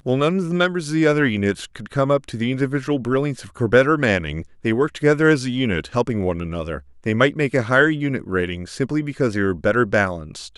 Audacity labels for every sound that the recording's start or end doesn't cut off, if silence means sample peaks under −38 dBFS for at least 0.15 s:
4.640000	6.810000	sound